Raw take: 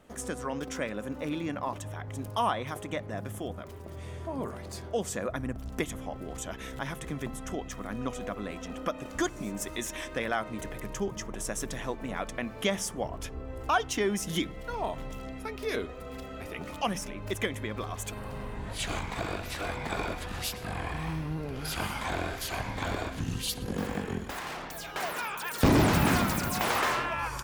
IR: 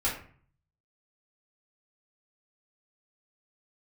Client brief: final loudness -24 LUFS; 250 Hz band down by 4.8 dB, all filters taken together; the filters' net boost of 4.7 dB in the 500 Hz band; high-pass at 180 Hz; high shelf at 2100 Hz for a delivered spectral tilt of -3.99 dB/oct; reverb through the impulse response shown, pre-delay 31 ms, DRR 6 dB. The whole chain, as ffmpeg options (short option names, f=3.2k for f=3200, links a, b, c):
-filter_complex "[0:a]highpass=180,equalizer=f=250:t=o:g=-8,equalizer=f=500:t=o:g=8.5,highshelf=f=2.1k:g=-4,asplit=2[a][b];[1:a]atrim=start_sample=2205,adelay=31[c];[b][c]afir=irnorm=-1:irlink=0,volume=-14.5dB[d];[a][d]amix=inputs=2:normalize=0,volume=8dB"